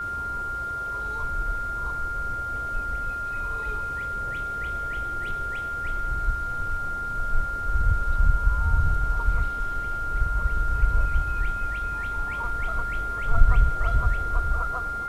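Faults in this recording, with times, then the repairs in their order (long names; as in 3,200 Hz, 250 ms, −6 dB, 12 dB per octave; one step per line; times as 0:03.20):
whistle 1,400 Hz −28 dBFS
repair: notch filter 1,400 Hz, Q 30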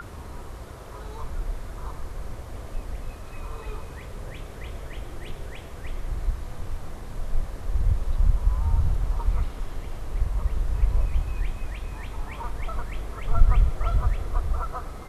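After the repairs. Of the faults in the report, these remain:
none of them is left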